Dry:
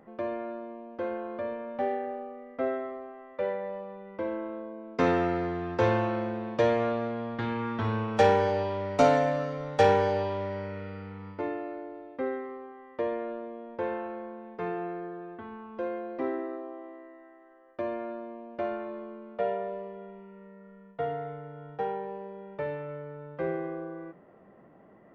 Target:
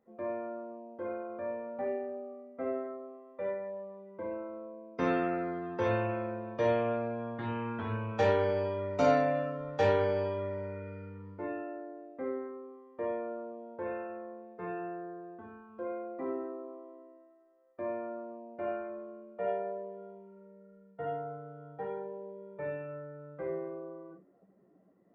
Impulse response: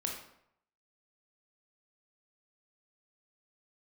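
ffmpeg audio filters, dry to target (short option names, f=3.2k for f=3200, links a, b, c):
-filter_complex "[1:a]atrim=start_sample=2205,afade=t=out:st=0.17:d=0.01,atrim=end_sample=7938,asetrate=48510,aresample=44100[a];[0:a][a]afir=irnorm=-1:irlink=0,afftdn=nr=13:nf=-45,volume=-6dB"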